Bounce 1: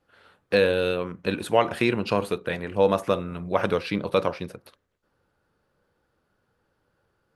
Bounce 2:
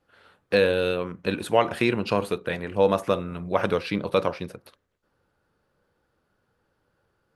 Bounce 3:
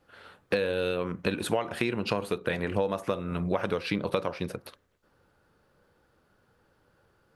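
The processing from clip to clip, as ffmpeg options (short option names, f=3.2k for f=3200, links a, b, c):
-af anull
-af "acompressor=threshold=-29dB:ratio=10,volume=5dB"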